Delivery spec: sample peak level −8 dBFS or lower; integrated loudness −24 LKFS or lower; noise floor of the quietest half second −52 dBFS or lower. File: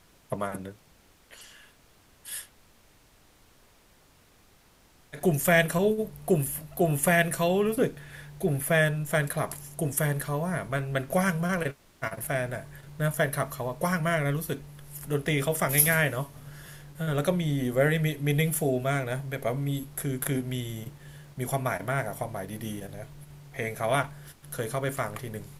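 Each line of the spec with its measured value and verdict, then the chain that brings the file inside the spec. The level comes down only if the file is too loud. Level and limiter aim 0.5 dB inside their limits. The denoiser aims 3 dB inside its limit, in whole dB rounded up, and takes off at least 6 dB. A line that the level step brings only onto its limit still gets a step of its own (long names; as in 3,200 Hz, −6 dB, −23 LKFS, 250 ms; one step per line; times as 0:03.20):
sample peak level −6.0 dBFS: out of spec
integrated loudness −28.0 LKFS: in spec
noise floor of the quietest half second −60 dBFS: in spec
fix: brickwall limiter −8.5 dBFS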